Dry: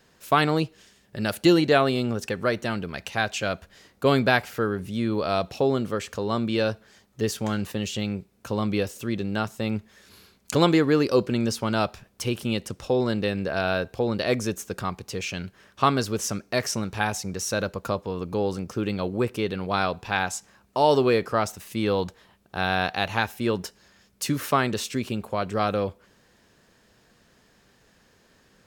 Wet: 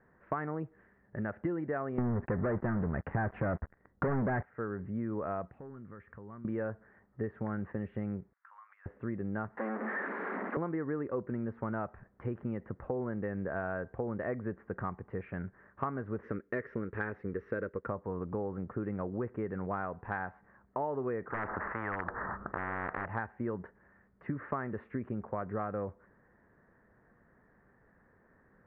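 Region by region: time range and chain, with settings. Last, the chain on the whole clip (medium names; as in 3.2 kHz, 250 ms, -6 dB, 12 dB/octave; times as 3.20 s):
1.98–4.43 s: tilt EQ -2.5 dB/octave + waveshaping leveller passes 5
5.47–6.45 s: peaking EQ 570 Hz -8.5 dB 1.9 oct + hard clipper -22 dBFS + compression 4:1, threshold -42 dBFS
8.33–8.86 s: transient shaper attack -4 dB, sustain +10 dB + steep high-pass 1.1 kHz + compression 12:1, threshold -45 dBFS
9.57–10.57 s: one-bit delta coder 64 kbps, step -20 dBFS + steep high-pass 230 Hz
16.23–17.87 s: companding laws mixed up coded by A + FFT filter 180 Hz 0 dB, 460 Hz +10 dB, 740 Hz -10 dB, 1.3 kHz +2 dB, 5 kHz +13 dB
21.30–23.06 s: integer overflow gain 13.5 dB + resonant low-pass 1.3 kHz, resonance Q 7.6 + spectrum-flattening compressor 10:1
whole clip: Chebyshev low-pass 1.9 kHz, order 5; compression 6:1, threshold -28 dBFS; trim -4 dB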